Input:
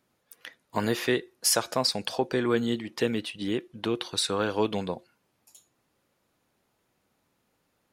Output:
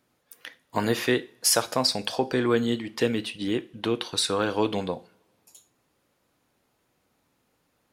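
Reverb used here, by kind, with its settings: two-slope reverb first 0.34 s, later 1.9 s, from -26 dB, DRR 12.5 dB; gain +2 dB

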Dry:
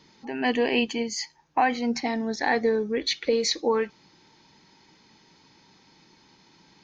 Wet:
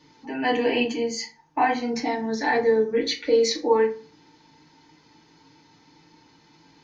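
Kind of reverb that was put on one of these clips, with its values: FDN reverb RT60 0.38 s, low-frequency decay 1.1×, high-frequency decay 0.55×, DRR -3.5 dB; gain -4 dB

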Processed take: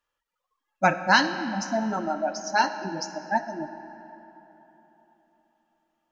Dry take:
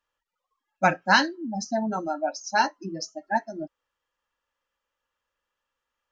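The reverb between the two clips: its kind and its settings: digital reverb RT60 3.7 s, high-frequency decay 0.65×, pre-delay 20 ms, DRR 10 dB

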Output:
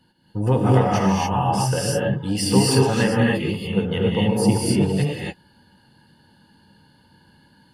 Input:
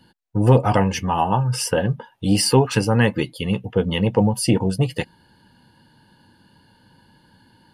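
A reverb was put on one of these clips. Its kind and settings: non-linear reverb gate 0.31 s rising, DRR -4 dB; gain -6 dB

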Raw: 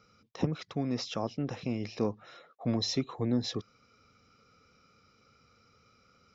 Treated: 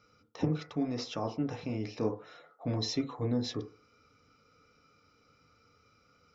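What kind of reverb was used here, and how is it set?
FDN reverb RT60 0.41 s, low-frequency decay 0.75×, high-frequency decay 0.25×, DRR 3 dB; gain -3 dB

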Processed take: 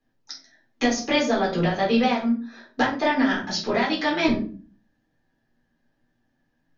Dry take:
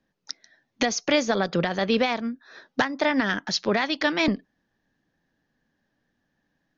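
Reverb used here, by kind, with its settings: shoebox room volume 250 m³, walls furnished, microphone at 3.9 m; gain -7 dB

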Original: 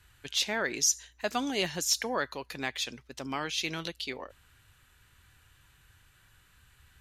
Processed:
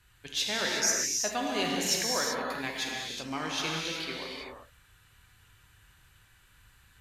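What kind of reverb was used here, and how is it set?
non-linear reverb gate 0.41 s flat, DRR -2.5 dB; gain -3 dB

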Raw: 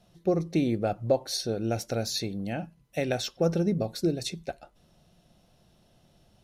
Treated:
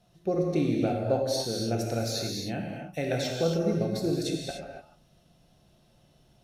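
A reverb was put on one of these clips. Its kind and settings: non-linear reverb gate 0.32 s flat, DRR -1 dB; gain -3.5 dB

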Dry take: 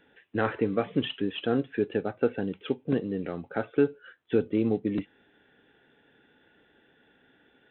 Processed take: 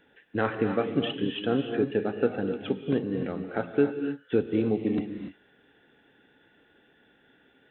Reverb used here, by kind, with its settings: non-linear reverb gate 0.32 s rising, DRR 6 dB

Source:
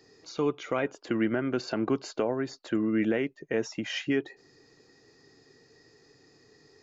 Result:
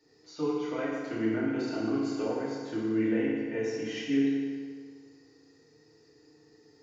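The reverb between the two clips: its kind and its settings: FDN reverb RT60 1.8 s, low-frequency decay 0.95×, high-frequency decay 0.8×, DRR -9.5 dB; gain -13.5 dB

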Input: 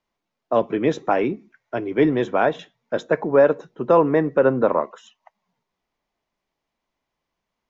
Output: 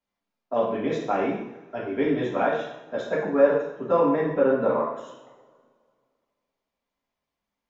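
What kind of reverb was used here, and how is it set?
two-slope reverb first 0.73 s, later 2.2 s, from -20 dB, DRR -7 dB; gain -12 dB

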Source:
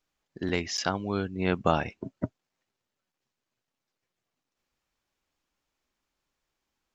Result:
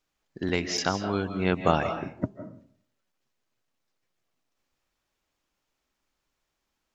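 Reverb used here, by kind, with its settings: digital reverb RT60 0.57 s, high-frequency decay 0.5×, pre-delay 0.12 s, DRR 8 dB; gain +1.5 dB

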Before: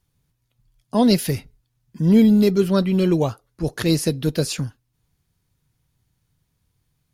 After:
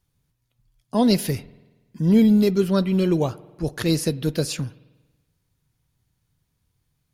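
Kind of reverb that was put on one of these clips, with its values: spring tank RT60 1.2 s, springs 47 ms, chirp 75 ms, DRR 19.5 dB; gain -2 dB

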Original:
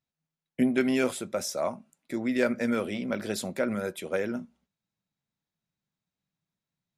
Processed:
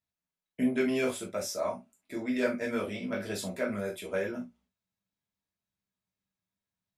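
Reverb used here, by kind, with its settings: non-linear reverb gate 90 ms falling, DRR -3.5 dB; gain -7.5 dB

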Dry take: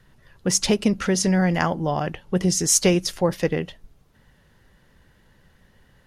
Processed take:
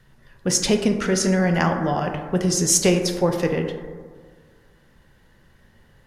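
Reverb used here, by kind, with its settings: plate-style reverb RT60 1.7 s, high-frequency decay 0.3×, DRR 4 dB

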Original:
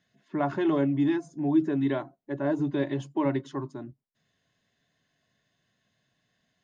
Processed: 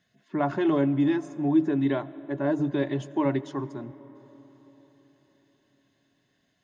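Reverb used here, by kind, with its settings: digital reverb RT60 4.5 s, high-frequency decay 0.5×, pre-delay 55 ms, DRR 17.5 dB; gain +1.5 dB

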